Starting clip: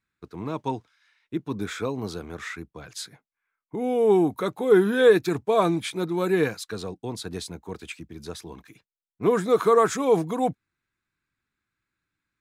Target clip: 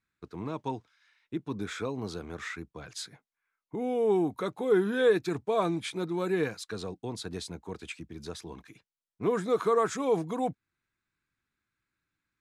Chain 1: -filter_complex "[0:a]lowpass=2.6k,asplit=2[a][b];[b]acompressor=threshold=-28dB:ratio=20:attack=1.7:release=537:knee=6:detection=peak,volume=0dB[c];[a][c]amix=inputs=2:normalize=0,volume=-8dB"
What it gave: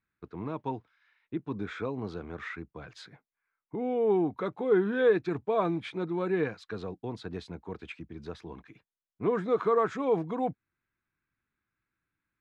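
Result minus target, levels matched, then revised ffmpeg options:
8000 Hz band -17.5 dB
-filter_complex "[0:a]lowpass=9.9k,asplit=2[a][b];[b]acompressor=threshold=-28dB:ratio=20:attack=1.7:release=537:knee=6:detection=peak,volume=0dB[c];[a][c]amix=inputs=2:normalize=0,volume=-8dB"

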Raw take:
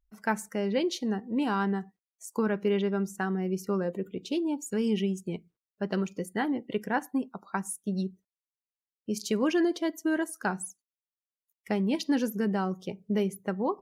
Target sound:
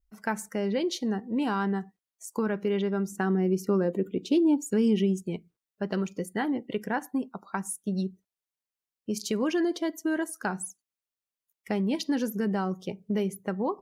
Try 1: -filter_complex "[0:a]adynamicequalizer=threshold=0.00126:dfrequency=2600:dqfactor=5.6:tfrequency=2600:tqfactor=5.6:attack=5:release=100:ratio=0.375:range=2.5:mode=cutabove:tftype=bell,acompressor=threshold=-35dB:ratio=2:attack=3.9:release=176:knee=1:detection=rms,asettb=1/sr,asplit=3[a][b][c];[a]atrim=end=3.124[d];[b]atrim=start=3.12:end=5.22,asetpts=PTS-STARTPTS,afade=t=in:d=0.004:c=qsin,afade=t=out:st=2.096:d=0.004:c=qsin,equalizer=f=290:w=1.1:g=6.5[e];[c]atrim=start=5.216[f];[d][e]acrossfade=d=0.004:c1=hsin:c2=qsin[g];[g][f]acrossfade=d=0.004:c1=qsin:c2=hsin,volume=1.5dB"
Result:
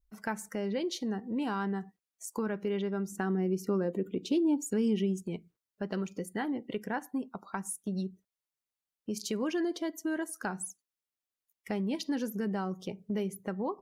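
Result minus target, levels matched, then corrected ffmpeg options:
compressor: peak gain reduction +5 dB
-filter_complex "[0:a]adynamicequalizer=threshold=0.00126:dfrequency=2600:dqfactor=5.6:tfrequency=2600:tqfactor=5.6:attack=5:release=100:ratio=0.375:range=2.5:mode=cutabove:tftype=bell,acompressor=threshold=-25dB:ratio=2:attack=3.9:release=176:knee=1:detection=rms,asettb=1/sr,asplit=3[a][b][c];[a]atrim=end=3.124[d];[b]atrim=start=3.12:end=5.22,asetpts=PTS-STARTPTS,afade=t=in:d=0.004:c=qsin,afade=t=out:st=2.096:d=0.004:c=qsin,equalizer=f=290:w=1.1:g=6.5[e];[c]atrim=start=5.216[f];[d][e]acrossfade=d=0.004:c1=hsin:c2=qsin[g];[g][f]acrossfade=d=0.004:c1=qsin:c2=hsin,volume=1.5dB"

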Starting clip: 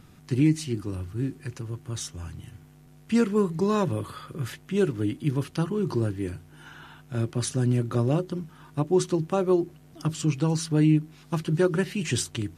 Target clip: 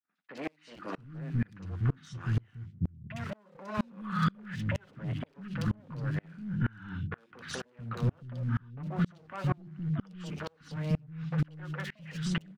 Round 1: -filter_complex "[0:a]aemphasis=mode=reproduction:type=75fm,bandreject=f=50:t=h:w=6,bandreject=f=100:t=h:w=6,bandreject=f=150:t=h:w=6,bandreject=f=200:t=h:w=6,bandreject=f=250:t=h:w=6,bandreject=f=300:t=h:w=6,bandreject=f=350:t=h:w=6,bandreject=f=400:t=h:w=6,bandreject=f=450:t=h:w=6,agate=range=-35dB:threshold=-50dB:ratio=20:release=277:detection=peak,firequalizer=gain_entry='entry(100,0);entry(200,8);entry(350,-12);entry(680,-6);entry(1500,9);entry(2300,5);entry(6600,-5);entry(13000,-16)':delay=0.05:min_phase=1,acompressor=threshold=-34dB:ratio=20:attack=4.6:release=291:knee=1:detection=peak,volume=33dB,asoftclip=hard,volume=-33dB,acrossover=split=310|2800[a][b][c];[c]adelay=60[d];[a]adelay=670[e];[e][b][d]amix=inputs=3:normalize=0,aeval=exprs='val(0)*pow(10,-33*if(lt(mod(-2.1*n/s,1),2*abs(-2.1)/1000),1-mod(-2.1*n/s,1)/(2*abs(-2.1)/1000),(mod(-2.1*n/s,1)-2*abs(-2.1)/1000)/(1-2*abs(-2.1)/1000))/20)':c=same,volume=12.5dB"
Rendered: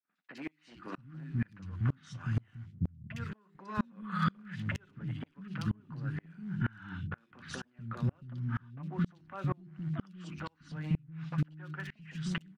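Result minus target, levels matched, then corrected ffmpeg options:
compressor: peak gain reduction +5.5 dB
-filter_complex "[0:a]aemphasis=mode=reproduction:type=75fm,bandreject=f=50:t=h:w=6,bandreject=f=100:t=h:w=6,bandreject=f=150:t=h:w=6,bandreject=f=200:t=h:w=6,bandreject=f=250:t=h:w=6,bandreject=f=300:t=h:w=6,bandreject=f=350:t=h:w=6,bandreject=f=400:t=h:w=6,bandreject=f=450:t=h:w=6,agate=range=-35dB:threshold=-50dB:ratio=20:release=277:detection=peak,firequalizer=gain_entry='entry(100,0);entry(200,8);entry(350,-12);entry(680,-6);entry(1500,9);entry(2300,5);entry(6600,-5);entry(13000,-16)':delay=0.05:min_phase=1,acompressor=threshold=-28dB:ratio=20:attack=4.6:release=291:knee=1:detection=peak,volume=33dB,asoftclip=hard,volume=-33dB,acrossover=split=310|2800[a][b][c];[c]adelay=60[d];[a]adelay=670[e];[e][b][d]amix=inputs=3:normalize=0,aeval=exprs='val(0)*pow(10,-33*if(lt(mod(-2.1*n/s,1),2*abs(-2.1)/1000),1-mod(-2.1*n/s,1)/(2*abs(-2.1)/1000),(mod(-2.1*n/s,1)-2*abs(-2.1)/1000)/(1-2*abs(-2.1)/1000))/20)':c=same,volume=12.5dB"

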